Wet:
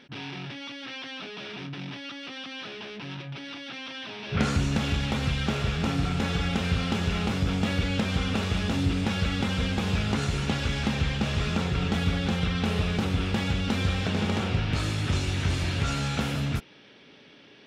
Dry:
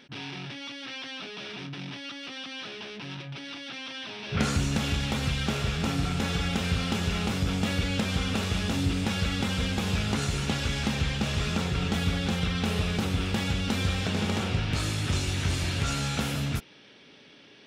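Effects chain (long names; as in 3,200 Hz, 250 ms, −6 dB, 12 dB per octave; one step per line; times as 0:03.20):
high-shelf EQ 6,100 Hz −10 dB
level +1.5 dB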